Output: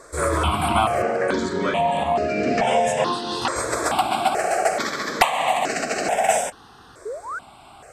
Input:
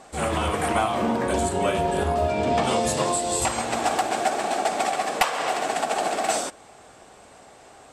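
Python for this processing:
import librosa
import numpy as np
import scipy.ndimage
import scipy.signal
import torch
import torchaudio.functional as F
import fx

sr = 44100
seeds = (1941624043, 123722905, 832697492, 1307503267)

y = fx.bandpass_edges(x, sr, low_hz=200.0, high_hz=5900.0, at=(1.02, 3.56))
y = fx.spec_paint(y, sr, seeds[0], shape='rise', start_s=7.05, length_s=0.34, low_hz=390.0, high_hz=1600.0, level_db=-35.0)
y = fx.phaser_held(y, sr, hz=2.3, low_hz=780.0, high_hz=3400.0)
y = y * librosa.db_to_amplitude(6.5)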